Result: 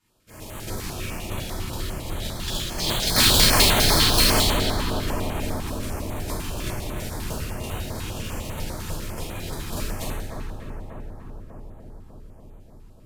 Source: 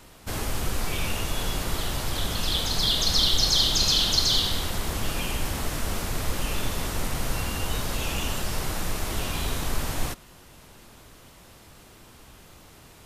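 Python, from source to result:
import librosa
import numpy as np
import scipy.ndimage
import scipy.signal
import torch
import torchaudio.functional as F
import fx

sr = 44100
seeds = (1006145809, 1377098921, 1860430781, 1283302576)

y = fx.tracing_dist(x, sr, depth_ms=0.071)
y = (np.mod(10.0 ** (10.5 / 20.0) * y + 1.0, 2.0) - 1.0) / 10.0 ** (10.5 / 20.0)
y = fx.cheby_harmonics(y, sr, harmonics=(3, 6), levels_db=(-10, -43), full_scale_db=-10.5)
y = fx.echo_filtered(y, sr, ms=295, feedback_pct=82, hz=1900.0, wet_db=-4)
y = fx.rev_double_slope(y, sr, seeds[0], early_s=0.88, late_s=3.0, knee_db=-18, drr_db=-9.5)
y = fx.filter_held_notch(y, sr, hz=10.0, low_hz=600.0, high_hz=5100.0)
y = y * 10.0 ** (1.0 / 20.0)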